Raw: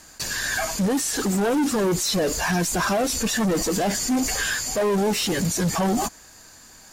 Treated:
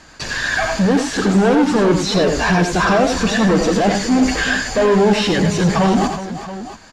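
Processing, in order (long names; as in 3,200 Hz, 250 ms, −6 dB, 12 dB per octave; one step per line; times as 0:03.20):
low-pass filter 3,900 Hz 12 dB per octave
multi-tap delay 85/105/370/679 ms −7.5/−10.5/−12.5/−14 dB
level +7 dB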